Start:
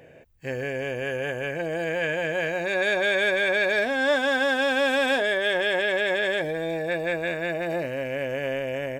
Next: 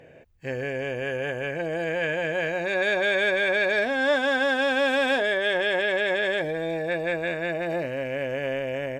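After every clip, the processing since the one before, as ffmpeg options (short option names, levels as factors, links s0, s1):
-af "highshelf=f=9100:g=-10"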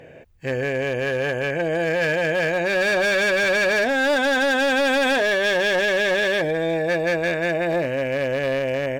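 -af "asoftclip=type=hard:threshold=0.075,volume=2"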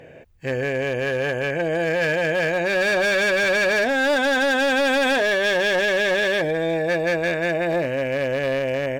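-af anull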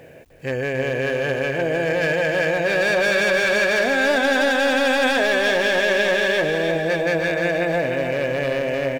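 -af "acrusher=bits=9:mix=0:aa=0.000001,aecho=1:1:303|606|909|1212|1515|1818:0.501|0.241|0.115|0.0554|0.0266|0.0128"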